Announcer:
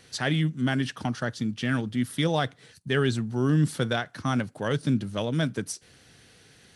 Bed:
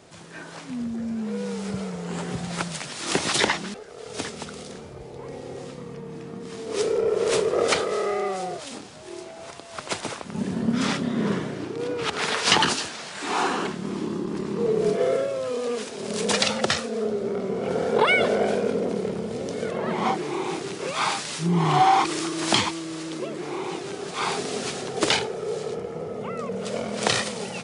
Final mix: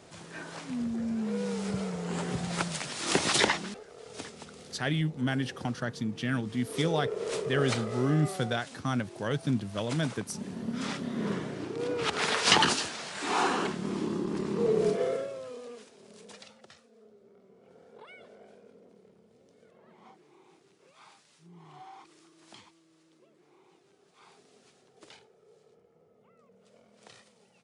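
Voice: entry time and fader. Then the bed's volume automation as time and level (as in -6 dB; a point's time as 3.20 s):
4.60 s, -4.0 dB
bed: 3.37 s -2.5 dB
4.28 s -11 dB
10.69 s -11 dB
11.95 s -3 dB
14.80 s -3 dB
16.62 s -31.5 dB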